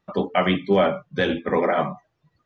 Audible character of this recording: noise floor -74 dBFS; spectral tilt -4.0 dB/octave

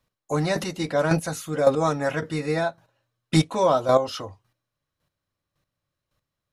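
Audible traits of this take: chopped level 1.8 Hz, depth 65%, duty 15%

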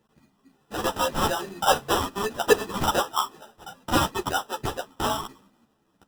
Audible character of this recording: aliases and images of a low sample rate 2.2 kHz, jitter 0%; a shimmering, thickened sound

